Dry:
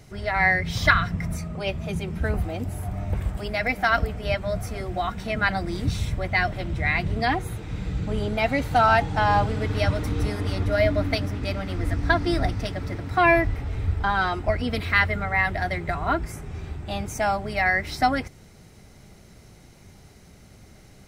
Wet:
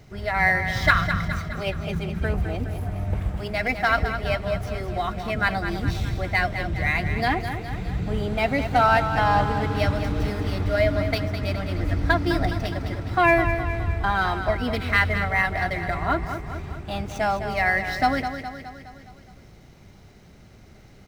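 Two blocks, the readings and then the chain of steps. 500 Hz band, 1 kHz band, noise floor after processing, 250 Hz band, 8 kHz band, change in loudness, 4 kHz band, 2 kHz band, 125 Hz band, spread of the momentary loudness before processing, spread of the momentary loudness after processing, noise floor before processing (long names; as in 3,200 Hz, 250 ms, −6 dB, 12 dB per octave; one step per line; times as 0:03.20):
+0.5 dB, +0.5 dB, −49 dBFS, +0.5 dB, −3.5 dB, +0.5 dB, 0.0 dB, +0.5 dB, +0.5 dB, 10 LU, 10 LU, −50 dBFS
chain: running median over 5 samples
on a send: repeating echo 208 ms, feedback 55%, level −9 dB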